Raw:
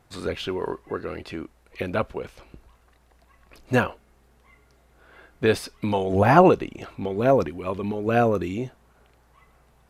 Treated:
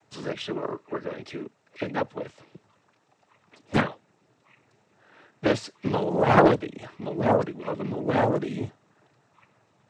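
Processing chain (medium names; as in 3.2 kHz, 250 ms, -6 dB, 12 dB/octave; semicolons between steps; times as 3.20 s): noise-vocoded speech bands 12; loudspeaker Doppler distortion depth 0.56 ms; trim -2 dB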